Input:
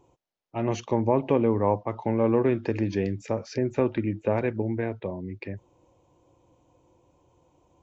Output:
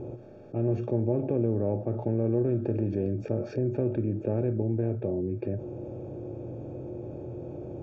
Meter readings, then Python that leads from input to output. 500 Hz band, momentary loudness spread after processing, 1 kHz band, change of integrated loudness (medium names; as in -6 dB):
-3.0 dB, 12 LU, -13.5 dB, -3.5 dB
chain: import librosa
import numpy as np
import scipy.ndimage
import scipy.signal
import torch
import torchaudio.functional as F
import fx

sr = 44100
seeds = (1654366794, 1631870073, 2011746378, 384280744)

y = fx.bin_compress(x, sr, power=0.6)
y = np.convolve(y, np.full(44, 1.0 / 44))[:len(y)]
y = fx.comb_fb(y, sr, f0_hz=120.0, decay_s=0.16, harmonics='odd', damping=0.0, mix_pct=70)
y = fx.env_flatten(y, sr, amount_pct=50)
y = y * 10.0 ** (1.0 / 20.0)